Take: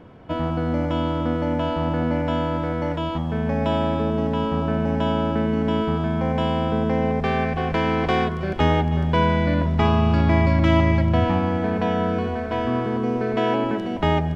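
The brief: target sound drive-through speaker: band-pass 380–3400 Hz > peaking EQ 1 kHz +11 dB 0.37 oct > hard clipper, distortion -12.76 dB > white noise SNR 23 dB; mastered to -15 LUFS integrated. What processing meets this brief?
band-pass 380–3400 Hz; peaking EQ 1 kHz +11 dB 0.37 oct; hard clipper -16 dBFS; white noise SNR 23 dB; trim +7.5 dB

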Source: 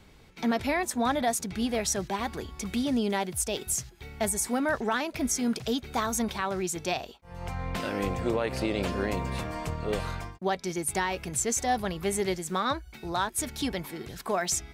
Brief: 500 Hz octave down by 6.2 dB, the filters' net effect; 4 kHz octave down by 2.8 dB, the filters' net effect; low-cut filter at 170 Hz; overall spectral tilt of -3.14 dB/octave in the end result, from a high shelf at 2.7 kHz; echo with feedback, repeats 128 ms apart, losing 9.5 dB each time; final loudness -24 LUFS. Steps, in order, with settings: high-pass 170 Hz; peaking EQ 500 Hz -8.5 dB; treble shelf 2.7 kHz +5 dB; peaking EQ 4 kHz -8 dB; feedback delay 128 ms, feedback 33%, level -9.5 dB; trim +6 dB

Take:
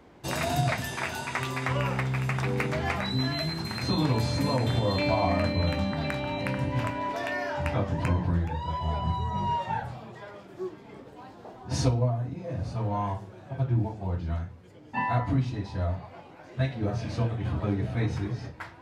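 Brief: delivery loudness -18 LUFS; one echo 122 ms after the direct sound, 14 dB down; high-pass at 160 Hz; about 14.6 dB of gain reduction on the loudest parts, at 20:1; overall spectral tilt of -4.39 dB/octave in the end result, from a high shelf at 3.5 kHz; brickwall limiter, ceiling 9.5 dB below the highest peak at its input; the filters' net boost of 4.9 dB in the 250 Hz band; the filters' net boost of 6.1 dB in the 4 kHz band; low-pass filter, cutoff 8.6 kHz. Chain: high-pass 160 Hz; low-pass 8.6 kHz; peaking EQ 250 Hz +7.5 dB; treble shelf 3.5 kHz +3 dB; peaking EQ 4 kHz +5 dB; compression 20:1, threshold -33 dBFS; peak limiter -30.5 dBFS; delay 122 ms -14 dB; trim +21.5 dB

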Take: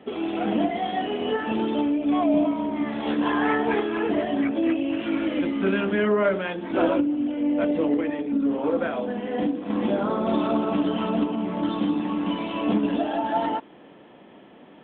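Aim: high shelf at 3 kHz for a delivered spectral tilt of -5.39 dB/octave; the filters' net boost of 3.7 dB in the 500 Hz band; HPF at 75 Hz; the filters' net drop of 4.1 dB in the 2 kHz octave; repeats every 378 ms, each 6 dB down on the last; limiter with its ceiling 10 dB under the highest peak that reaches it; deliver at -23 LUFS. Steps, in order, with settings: high-pass 75 Hz; peaking EQ 500 Hz +5 dB; peaking EQ 2 kHz -7 dB; treble shelf 3 kHz +3.5 dB; peak limiter -17.5 dBFS; feedback delay 378 ms, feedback 50%, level -6 dB; trim +1.5 dB

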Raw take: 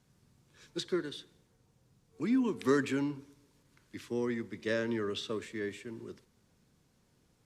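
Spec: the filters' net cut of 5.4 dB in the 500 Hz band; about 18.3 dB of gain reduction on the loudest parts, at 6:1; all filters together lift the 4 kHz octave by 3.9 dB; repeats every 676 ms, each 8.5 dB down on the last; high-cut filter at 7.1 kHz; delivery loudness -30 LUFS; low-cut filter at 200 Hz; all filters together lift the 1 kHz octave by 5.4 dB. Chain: high-pass 200 Hz; low-pass 7.1 kHz; peaking EQ 500 Hz -8.5 dB; peaking EQ 1 kHz +8 dB; peaking EQ 4 kHz +4.5 dB; compression 6:1, threshold -46 dBFS; feedback delay 676 ms, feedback 38%, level -8.5 dB; trim +20 dB

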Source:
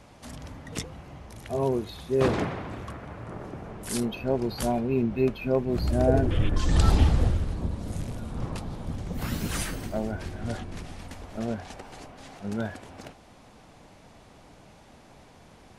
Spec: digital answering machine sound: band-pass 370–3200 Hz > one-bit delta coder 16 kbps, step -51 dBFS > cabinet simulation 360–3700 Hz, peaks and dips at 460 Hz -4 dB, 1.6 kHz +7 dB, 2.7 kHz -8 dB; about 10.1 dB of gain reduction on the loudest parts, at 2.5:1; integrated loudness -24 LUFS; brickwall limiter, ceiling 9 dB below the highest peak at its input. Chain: compression 2.5:1, threshold -30 dBFS; peak limiter -25.5 dBFS; band-pass 370–3200 Hz; one-bit delta coder 16 kbps, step -51 dBFS; cabinet simulation 360–3700 Hz, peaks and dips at 460 Hz -4 dB, 1.6 kHz +7 dB, 2.7 kHz -8 dB; trim +23 dB

